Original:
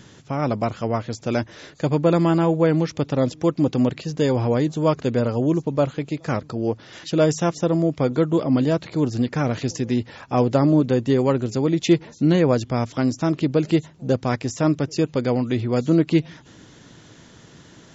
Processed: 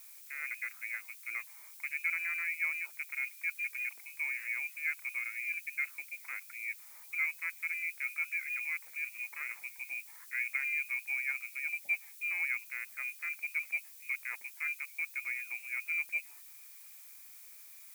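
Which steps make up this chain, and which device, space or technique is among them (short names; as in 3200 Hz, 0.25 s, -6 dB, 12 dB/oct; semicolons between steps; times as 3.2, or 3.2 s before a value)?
HPF 110 Hz; scrambled radio voice (BPF 340–3100 Hz; inverted band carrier 2700 Hz; white noise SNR 27 dB); differentiator; gain -4 dB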